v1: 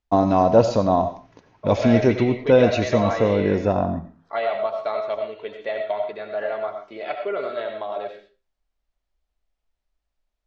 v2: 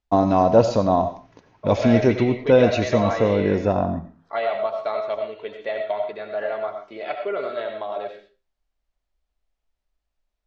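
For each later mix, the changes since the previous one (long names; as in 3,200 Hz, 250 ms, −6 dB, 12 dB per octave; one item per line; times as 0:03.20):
nothing changed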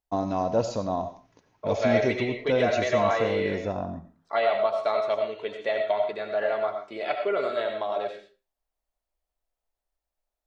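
first voice −10.0 dB
master: remove high-frequency loss of the air 110 metres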